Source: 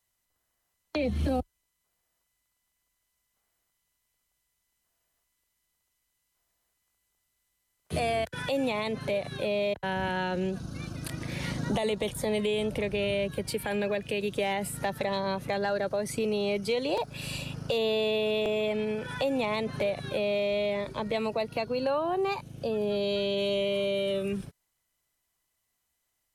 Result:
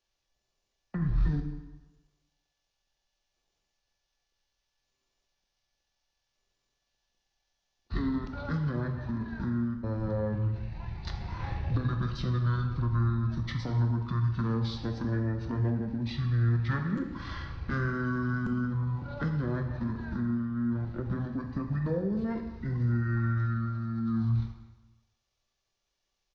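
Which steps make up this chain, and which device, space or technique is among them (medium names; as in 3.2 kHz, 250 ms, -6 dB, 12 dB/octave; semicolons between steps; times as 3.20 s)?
monster voice (pitch shift -9.5 st; formant shift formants -5.5 st; bass shelf 110 Hz +8 dB; reverberation RT60 1.2 s, pre-delay 5 ms, DRR 3.5 dB); trim -4.5 dB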